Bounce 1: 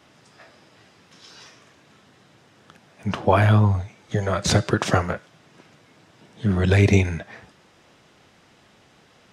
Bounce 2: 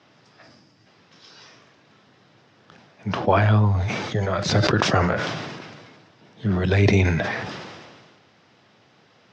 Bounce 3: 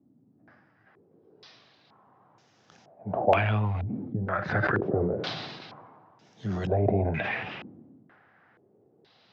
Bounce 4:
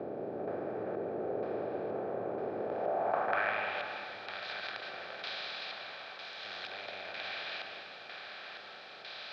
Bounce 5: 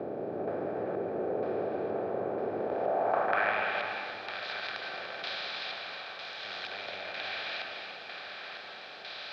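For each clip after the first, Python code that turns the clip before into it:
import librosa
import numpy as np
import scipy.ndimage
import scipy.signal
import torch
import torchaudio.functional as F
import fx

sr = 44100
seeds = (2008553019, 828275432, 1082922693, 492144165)

y1 = scipy.signal.sosfilt(scipy.signal.cheby1(3, 1.0, [100.0, 5400.0], 'bandpass', fs=sr, output='sos'), x)
y1 = fx.spec_box(y1, sr, start_s=0.42, length_s=0.45, low_hz=330.0, high_hz=4500.0, gain_db=-8)
y1 = fx.sustainer(y1, sr, db_per_s=33.0)
y1 = y1 * librosa.db_to_amplitude(-1.0)
y2 = fx.peak_eq(y1, sr, hz=770.0, db=5.0, octaves=0.32)
y2 = 10.0 ** (-7.5 / 20.0) * np.tanh(y2 / 10.0 ** (-7.5 / 20.0))
y2 = fx.filter_held_lowpass(y2, sr, hz=2.1, low_hz=260.0, high_hz=6600.0)
y2 = y2 * librosa.db_to_amplitude(-8.5)
y3 = fx.bin_compress(y2, sr, power=0.2)
y3 = fx.filter_sweep_bandpass(y3, sr, from_hz=400.0, to_hz=3900.0, start_s=2.65, end_s=3.89, q=2.0)
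y3 = fx.rev_freeverb(y3, sr, rt60_s=2.9, hf_ratio=0.55, predelay_ms=100, drr_db=5.0)
y3 = y3 * librosa.db_to_amplitude(-8.0)
y4 = y3 + 10.0 ** (-8.5 / 20.0) * np.pad(y3, (int(291 * sr / 1000.0), 0))[:len(y3)]
y4 = y4 * librosa.db_to_amplitude(3.0)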